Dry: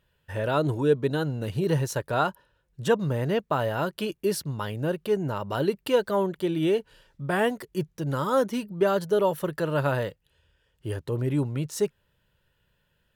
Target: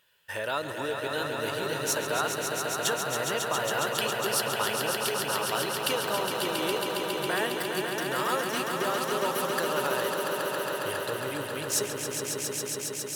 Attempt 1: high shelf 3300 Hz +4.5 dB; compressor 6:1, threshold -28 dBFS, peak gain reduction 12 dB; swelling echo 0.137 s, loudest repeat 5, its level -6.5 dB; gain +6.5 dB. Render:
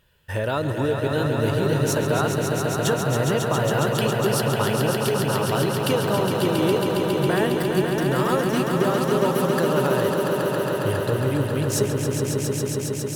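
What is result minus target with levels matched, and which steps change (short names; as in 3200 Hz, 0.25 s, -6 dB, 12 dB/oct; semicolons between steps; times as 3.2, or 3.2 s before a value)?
1000 Hz band -3.0 dB
add after compressor: HPF 1200 Hz 6 dB/oct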